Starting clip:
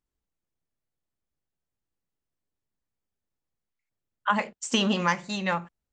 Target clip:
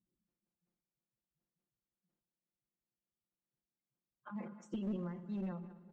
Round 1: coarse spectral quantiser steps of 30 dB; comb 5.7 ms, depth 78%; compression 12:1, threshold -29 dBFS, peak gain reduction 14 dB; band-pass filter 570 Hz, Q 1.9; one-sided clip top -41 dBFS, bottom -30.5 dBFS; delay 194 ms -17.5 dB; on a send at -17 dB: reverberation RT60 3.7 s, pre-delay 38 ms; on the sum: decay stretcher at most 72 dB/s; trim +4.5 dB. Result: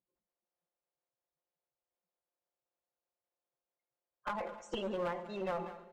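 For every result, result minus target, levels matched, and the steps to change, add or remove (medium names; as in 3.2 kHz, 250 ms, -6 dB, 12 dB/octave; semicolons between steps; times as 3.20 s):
250 Hz band -7.5 dB; compression: peak gain reduction -6 dB
change: band-pass filter 220 Hz, Q 1.9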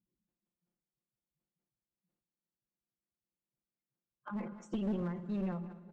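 compression: peak gain reduction -6 dB
change: compression 12:1, threshold -35.5 dBFS, peak gain reduction 20 dB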